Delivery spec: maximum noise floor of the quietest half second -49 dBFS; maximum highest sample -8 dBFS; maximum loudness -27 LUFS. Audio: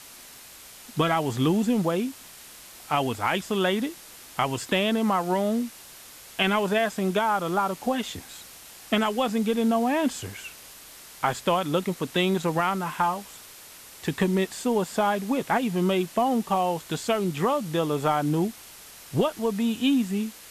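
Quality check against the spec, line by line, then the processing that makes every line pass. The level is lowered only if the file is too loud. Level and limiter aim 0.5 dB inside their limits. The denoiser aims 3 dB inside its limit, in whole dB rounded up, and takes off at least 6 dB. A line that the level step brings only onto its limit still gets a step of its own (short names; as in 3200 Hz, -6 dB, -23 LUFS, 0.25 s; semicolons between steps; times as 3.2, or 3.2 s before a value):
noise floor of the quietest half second -46 dBFS: fail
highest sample -8.5 dBFS: OK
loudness -25.5 LUFS: fail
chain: denoiser 6 dB, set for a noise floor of -46 dBFS; gain -2 dB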